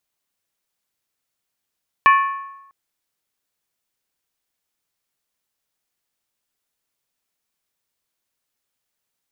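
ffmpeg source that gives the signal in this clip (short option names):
-f lavfi -i "aevalsrc='0.422*pow(10,-3*t/0.94)*sin(2*PI*1100*t)+0.211*pow(10,-3*t/0.745)*sin(2*PI*1753.4*t)+0.106*pow(10,-3*t/0.643)*sin(2*PI*2349.6*t)+0.0531*pow(10,-3*t/0.62)*sin(2*PI*2525.6*t)+0.0266*pow(10,-3*t/0.577)*sin(2*PI*2918.3*t)':d=0.65:s=44100"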